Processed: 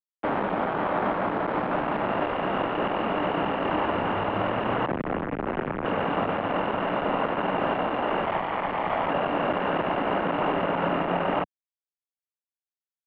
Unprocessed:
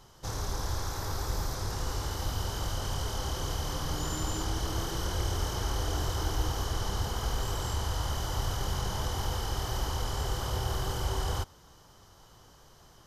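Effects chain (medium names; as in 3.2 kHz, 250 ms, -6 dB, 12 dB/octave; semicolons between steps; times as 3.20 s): 8.24–9.10 s: comb filter that takes the minimum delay 0.86 ms; compression 5:1, threshold -32 dBFS, peak gain reduction 8.5 dB; 4.86–5.85 s: tilt EQ -3.5 dB/octave; fuzz box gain 38 dB, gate -43 dBFS; mistuned SSB -210 Hz 210–3300 Hz; three-band isolator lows -15 dB, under 170 Hz, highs -24 dB, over 2.2 kHz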